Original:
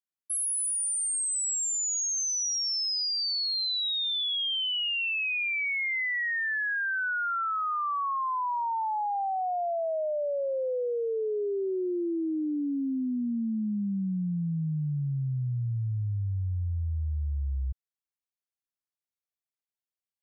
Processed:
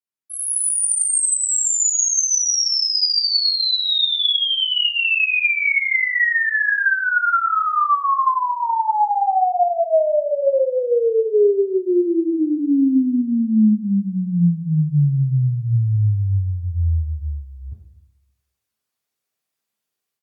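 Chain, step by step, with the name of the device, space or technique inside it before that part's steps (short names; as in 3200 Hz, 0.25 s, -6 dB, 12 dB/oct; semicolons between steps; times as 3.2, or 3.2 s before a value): 9.8–10.47 dynamic EQ 3000 Hz, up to +5 dB, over -52 dBFS, Q 0.75; far-field microphone of a smart speaker (reverb RT60 0.70 s, pre-delay 3 ms, DRR -2 dB; HPF 110 Hz 24 dB/oct; AGC gain up to 16.5 dB; gain -6.5 dB; Opus 48 kbps 48000 Hz)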